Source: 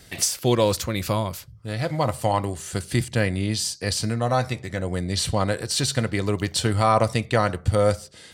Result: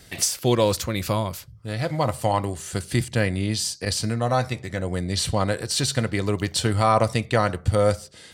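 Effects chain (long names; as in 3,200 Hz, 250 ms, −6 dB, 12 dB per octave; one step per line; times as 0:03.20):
0:03.85–0:04.54: downward expander −26 dBFS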